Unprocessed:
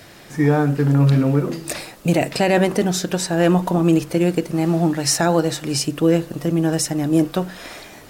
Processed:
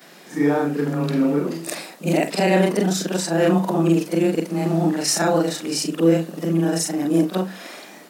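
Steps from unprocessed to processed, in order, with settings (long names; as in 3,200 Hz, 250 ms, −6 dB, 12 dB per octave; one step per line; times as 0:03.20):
every overlapping window played backwards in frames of 97 ms
elliptic high-pass filter 170 Hz
level +2.5 dB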